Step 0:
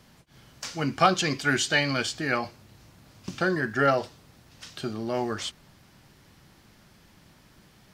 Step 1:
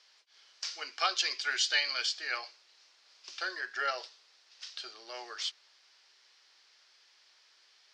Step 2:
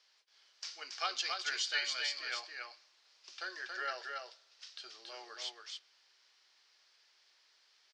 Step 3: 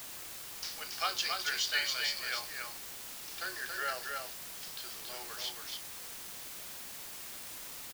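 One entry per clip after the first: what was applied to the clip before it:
Chebyshev band-pass 400–5100 Hz, order 3; differentiator; gain +6 dB
echo 0.278 s -4 dB; on a send at -23.5 dB: reverb RT60 0.95 s, pre-delay 38 ms; on the sum: gain -6.5 dB
in parallel at -9.5 dB: requantised 6-bit, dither triangular; on the sum: doubler 30 ms -13.5 dB

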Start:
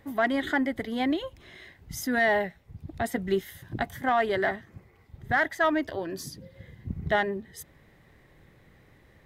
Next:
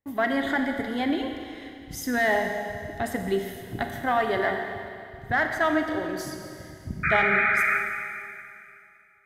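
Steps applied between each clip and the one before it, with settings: painted sound noise, 7.03–7.78, 1200–2500 Hz -24 dBFS; gate -52 dBFS, range -32 dB; Schroeder reverb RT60 2.5 s, combs from 29 ms, DRR 4 dB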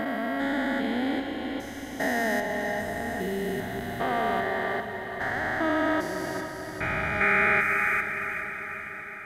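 stepped spectrum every 0.4 s; on a send: diffused feedback echo 0.458 s, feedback 65%, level -10 dB; on the sum: gain +1.5 dB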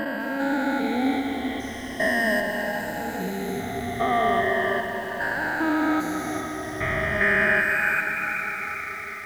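moving spectral ripple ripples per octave 1.3, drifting -0.39 Hz, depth 15 dB; lo-fi delay 0.2 s, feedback 80%, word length 7-bit, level -11.5 dB

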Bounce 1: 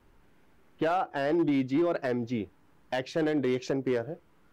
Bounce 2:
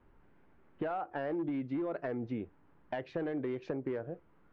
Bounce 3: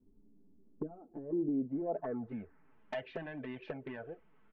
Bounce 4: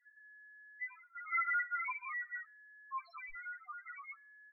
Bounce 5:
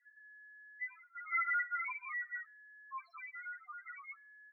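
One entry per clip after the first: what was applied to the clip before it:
compressor, threshold -30 dBFS, peak gain reduction 7 dB; LPF 2000 Hz 12 dB/oct; gain -2.5 dB
low-pass sweep 280 Hz -> 2900 Hz, 1.23–2.81; envelope flanger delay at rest 11.2 ms, full sweep at -27.5 dBFS; comb 4.6 ms, depth 43%; gain -1 dB
ring modulator 1700 Hz; loudest bins only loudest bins 1; on a send at -23 dB: reverb RT60 0.80 s, pre-delay 3 ms; on the sum: gain +10.5 dB
band-pass 1800 Hz, Q 1.2; gain +1 dB

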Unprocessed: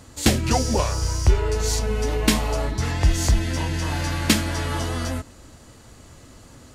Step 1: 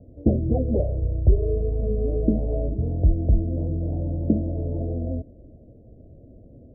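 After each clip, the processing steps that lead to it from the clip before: steep low-pass 660 Hz 72 dB/oct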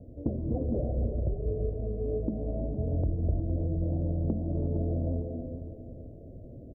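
compressor, threshold -28 dBFS, peak gain reduction 16 dB; feedback echo 0.46 s, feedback 35%, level -11 dB; non-linear reverb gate 0.38 s rising, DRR 3.5 dB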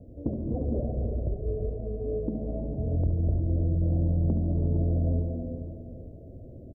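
feedback echo 70 ms, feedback 59%, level -9 dB

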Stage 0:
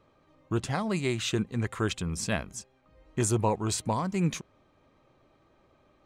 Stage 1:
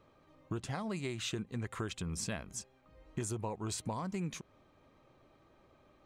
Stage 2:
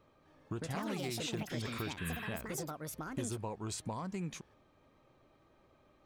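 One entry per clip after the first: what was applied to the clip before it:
compressor 6:1, threshold -34 dBFS, peak gain reduction 12.5 dB; gain -1 dB
spectral repair 2–2.28, 940–12000 Hz after; echoes that change speed 0.255 s, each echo +6 st, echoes 2; gain -2 dB

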